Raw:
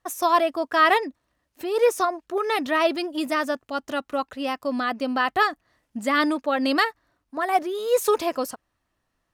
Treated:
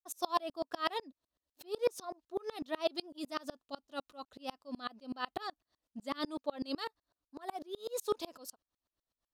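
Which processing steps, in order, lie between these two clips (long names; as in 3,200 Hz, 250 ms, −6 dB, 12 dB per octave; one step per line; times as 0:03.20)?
octave-band graphic EQ 125/2,000/4,000 Hz −6/−9/+8 dB
tremolo with a ramp in dB swelling 8 Hz, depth 31 dB
level −6.5 dB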